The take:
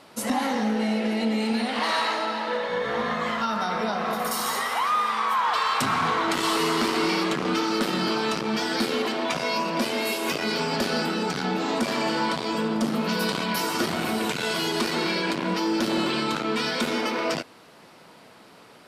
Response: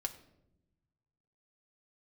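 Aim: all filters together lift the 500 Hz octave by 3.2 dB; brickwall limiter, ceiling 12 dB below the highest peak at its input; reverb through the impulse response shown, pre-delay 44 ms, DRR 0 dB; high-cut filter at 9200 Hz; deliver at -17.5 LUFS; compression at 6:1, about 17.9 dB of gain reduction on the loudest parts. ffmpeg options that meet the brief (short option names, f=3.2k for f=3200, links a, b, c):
-filter_complex "[0:a]lowpass=9.2k,equalizer=f=500:t=o:g=4,acompressor=threshold=-40dB:ratio=6,alimiter=level_in=15.5dB:limit=-24dB:level=0:latency=1,volume=-15.5dB,asplit=2[a][b];[1:a]atrim=start_sample=2205,adelay=44[c];[b][c]afir=irnorm=-1:irlink=0,volume=0dB[d];[a][d]amix=inputs=2:normalize=0,volume=27dB"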